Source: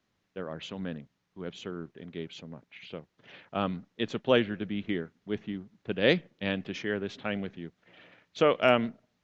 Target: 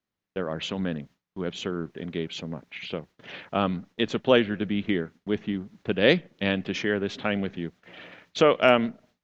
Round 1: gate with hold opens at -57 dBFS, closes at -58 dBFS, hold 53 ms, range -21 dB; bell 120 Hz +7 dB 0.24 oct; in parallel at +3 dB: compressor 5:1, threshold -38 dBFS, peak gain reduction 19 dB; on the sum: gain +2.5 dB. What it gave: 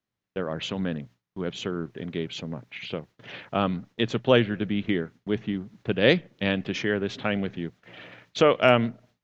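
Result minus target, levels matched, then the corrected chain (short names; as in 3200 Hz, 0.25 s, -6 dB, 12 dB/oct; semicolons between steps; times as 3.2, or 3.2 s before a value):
125 Hz band +2.5 dB
gate with hold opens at -57 dBFS, closes at -58 dBFS, hold 53 ms, range -21 dB; bell 120 Hz -4 dB 0.24 oct; in parallel at +3 dB: compressor 5:1, threshold -38 dBFS, peak gain reduction 19 dB; on the sum: gain +2.5 dB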